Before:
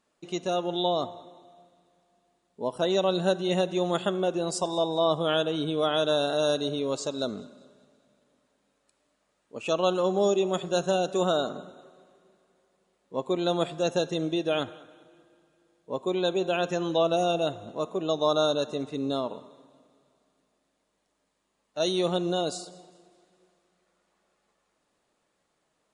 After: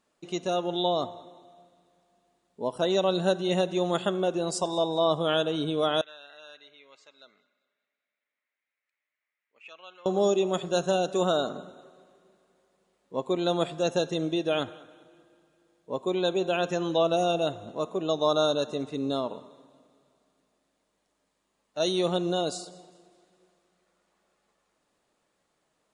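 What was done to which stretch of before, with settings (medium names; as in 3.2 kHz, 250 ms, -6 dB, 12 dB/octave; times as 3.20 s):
6.01–10.06 s: band-pass filter 2.1 kHz, Q 6.7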